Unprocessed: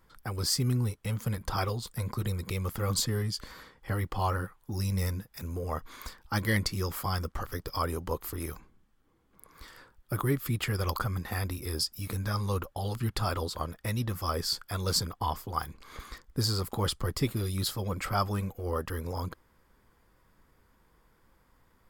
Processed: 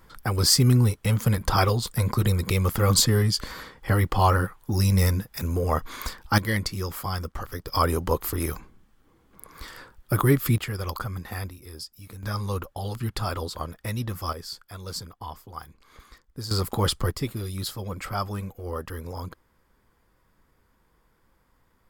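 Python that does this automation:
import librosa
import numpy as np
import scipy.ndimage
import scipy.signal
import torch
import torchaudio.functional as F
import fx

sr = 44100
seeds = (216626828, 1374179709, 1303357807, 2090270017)

y = fx.gain(x, sr, db=fx.steps((0.0, 9.5), (6.38, 1.5), (7.72, 8.5), (10.58, -0.5), (11.49, -8.0), (12.23, 1.5), (14.33, -6.5), (16.51, 6.0), (17.11, -0.5)))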